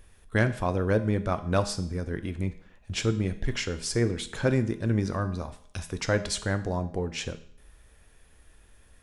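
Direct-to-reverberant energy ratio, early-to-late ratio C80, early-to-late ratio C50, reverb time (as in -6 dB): 9.0 dB, 16.5 dB, 13.5 dB, 0.65 s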